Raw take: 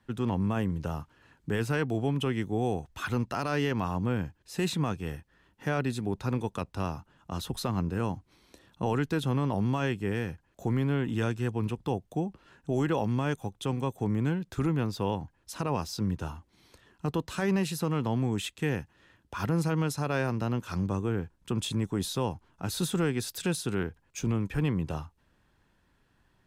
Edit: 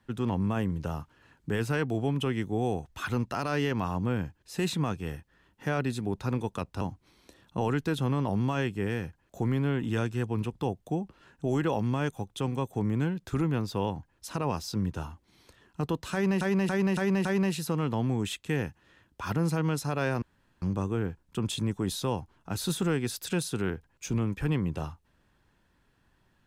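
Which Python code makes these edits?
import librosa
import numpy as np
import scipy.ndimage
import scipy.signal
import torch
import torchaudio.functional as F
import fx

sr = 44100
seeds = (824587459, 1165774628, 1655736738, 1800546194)

y = fx.edit(x, sr, fx.cut(start_s=6.81, length_s=1.25),
    fx.repeat(start_s=17.38, length_s=0.28, count=5),
    fx.room_tone_fill(start_s=20.35, length_s=0.4), tone=tone)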